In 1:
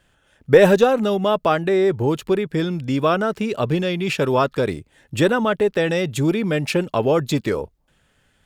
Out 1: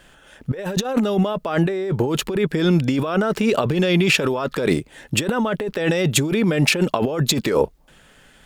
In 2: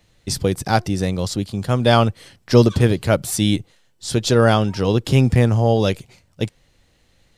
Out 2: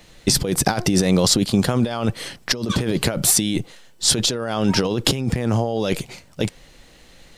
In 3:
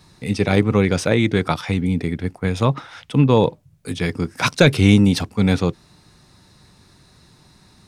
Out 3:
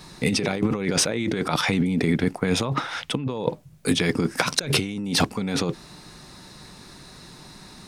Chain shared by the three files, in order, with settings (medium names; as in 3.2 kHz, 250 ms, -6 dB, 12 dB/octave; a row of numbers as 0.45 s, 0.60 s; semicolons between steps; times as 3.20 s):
peaking EQ 88 Hz -12.5 dB 0.83 oct; compressor with a negative ratio -26 dBFS, ratio -1; peak normalisation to -1.5 dBFS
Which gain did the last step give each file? +6.0 dB, +5.5 dB, +2.0 dB